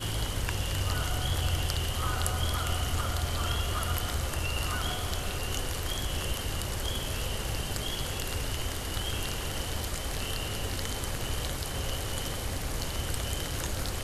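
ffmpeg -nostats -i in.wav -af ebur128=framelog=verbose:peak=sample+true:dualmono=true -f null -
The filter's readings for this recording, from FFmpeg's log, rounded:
Integrated loudness:
  I:         -29.1 LUFS
  Threshold: -39.1 LUFS
Loudness range:
  LRA:         3.0 LU
  Threshold: -49.1 LUFS
  LRA low:   -30.3 LUFS
  LRA high:  -27.3 LUFS
Sample peak:
  Peak:       -9.1 dBFS
True peak:
  Peak:       -9.0 dBFS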